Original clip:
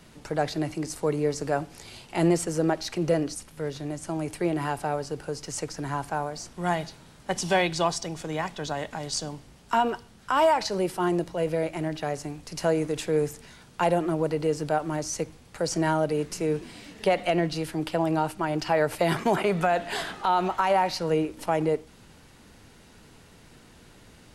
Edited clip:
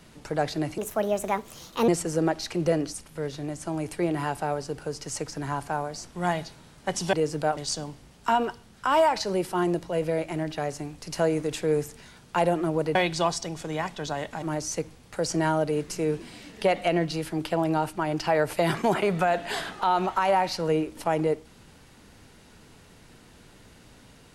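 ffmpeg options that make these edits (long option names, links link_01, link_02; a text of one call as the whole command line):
ffmpeg -i in.wav -filter_complex "[0:a]asplit=7[link_01][link_02][link_03][link_04][link_05][link_06][link_07];[link_01]atrim=end=0.784[link_08];[link_02]atrim=start=0.78:end=2.3,asetpts=PTS-STARTPTS,asetrate=60858,aresample=44100[link_09];[link_03]atrim=start=2.296:end=7.552[link_10];[link_04]atrim=start=14.398:end=14.842[link_11];[link_05]atrim=start=9.018:end=14.402[link_12];[link_06]atrim=start=7.548:end=9.022[link_13];[link_07]atrim=start=14.838[link_14];[link_08][link_09]acrossfade=duration=0.004:curve1=hsin:curve2=hsin[link_15];[link_15][link_10]acrossfade=duration=0.004:curve1=hsin:curve2=hsin[link_16];[link_16][link_11]acrossfade=duration=0.004:curve1=hsin:curve2=hsin[link_17];[link_17][link_12]acrossfade=duration=0.004:curve1=hsin:curve2=hsin[link_18];[link_18][link_13]acrossfade=duration=0.004:curve1=hsin:curve2=hsin[link_19];[link_19][link_14]acrossfade=duration=0.004:curve1=hsin:curve2=hsin" out.wav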